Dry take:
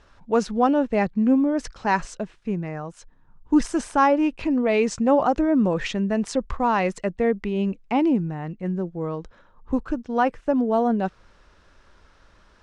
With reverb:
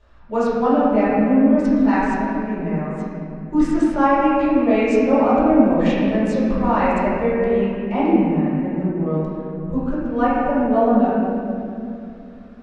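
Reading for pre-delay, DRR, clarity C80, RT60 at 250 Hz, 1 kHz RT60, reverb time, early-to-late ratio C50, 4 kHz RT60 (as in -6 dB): 3 ms, -12.0 dB, -1.5 dB, 3.8 s, 2.4 s, 2.7 s, -3.5 dB, 1.8 s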